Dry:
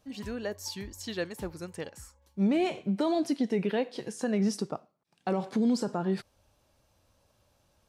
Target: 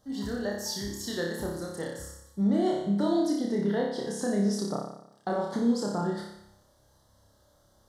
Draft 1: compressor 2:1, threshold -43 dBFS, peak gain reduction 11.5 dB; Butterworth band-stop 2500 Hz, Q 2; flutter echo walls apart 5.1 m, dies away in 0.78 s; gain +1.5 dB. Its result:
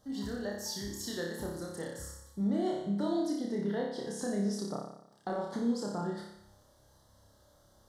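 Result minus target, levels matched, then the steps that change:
compressor: peak gain reduction +6 dB
change: compressor 2:1, threshold -31.5 dBFS, peak gain reduction 5.5 dB

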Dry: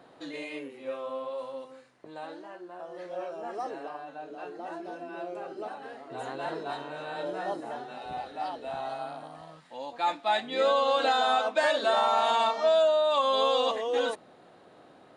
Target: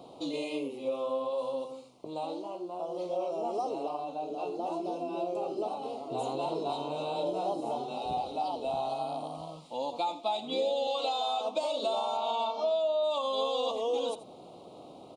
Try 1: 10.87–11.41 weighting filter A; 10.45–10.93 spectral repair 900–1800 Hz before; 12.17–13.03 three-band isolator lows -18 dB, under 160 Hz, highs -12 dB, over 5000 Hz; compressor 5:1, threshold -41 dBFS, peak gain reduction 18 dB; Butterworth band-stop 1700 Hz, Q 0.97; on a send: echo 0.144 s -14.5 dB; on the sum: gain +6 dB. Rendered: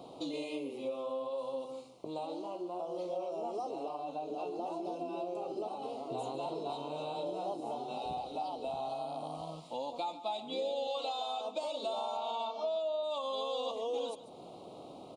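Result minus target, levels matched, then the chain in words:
echo 61 ms late; compressor: peak gain reduction +5.5 dB
10.87–11.41 weighting filter A; 10.45–10.93 spectral repair 900–1800 Hz before; 12.17–13.03 three-band isolator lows -18 dB, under 160 Hz, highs -12 dB, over 5000 Hz; compressor 5:1, threshold -34 dBFS, peak gain reduction 12.5 dB; Butterworth band-stop 1700 Hz, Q 0.97; on a send: echo 83 ms -14.5 dB; on the sum: gain +6 dB

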